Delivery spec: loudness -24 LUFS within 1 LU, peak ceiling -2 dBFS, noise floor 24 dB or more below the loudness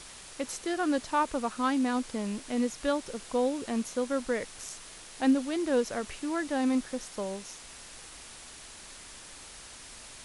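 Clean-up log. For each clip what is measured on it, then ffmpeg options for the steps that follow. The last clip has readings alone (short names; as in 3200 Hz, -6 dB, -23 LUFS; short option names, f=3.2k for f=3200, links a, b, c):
noise floor -48 dBFS; noise floor target -55 dBFS; loudness -31.0 LUFS; peak -15.5 dBFS; loudness target -24.0 LUFS
-> -af "afftdn=nr=7:nf=-48"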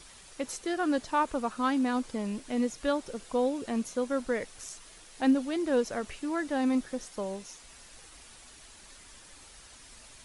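noise floor -53 dBFS; noise floor target -55 dBFS
-> -af "afftdn=nr=6:nf=-53"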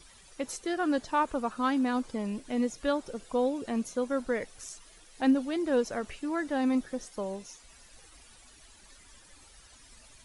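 noise floor -56 dBFS; loudness -31.0 LUFS; peak -16.0 dBFS; loudness target -24.0 LUFS
-> -af "volume=7dB"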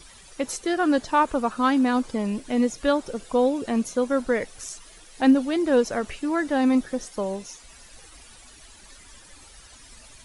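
loudness -24.0 LUFS; peak -9.0 dBFS; noise floor -49 dBFS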